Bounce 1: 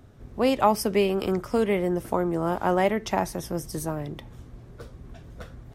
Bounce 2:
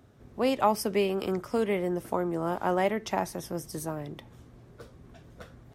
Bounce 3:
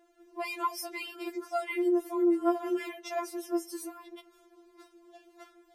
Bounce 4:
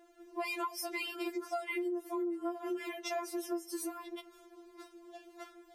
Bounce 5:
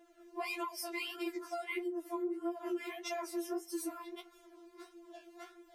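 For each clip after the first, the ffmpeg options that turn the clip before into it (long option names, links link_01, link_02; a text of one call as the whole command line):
ffmpeg -i in.wav -af "highpass=frequency=120:poles=1,volume=-3.5dB" out.wav
ffmpeg -i in.wav -af "afftfilt=real='re*4*eq(mod(b,16),0)':imag='im*4*eq(mod(b,16),0)':win_size=2048:overlap=0.75" out.wav
ffmpeg -i in.wav -af "acompressor=threshold=-36dB:ratio=16,volume=3dB" out.wav
ffmpeg -i in.wav -af "flanger=delay=9:depth=8.9:regen=25:speed=1.6:shape=sinusoidal,volume=2dB" out.wav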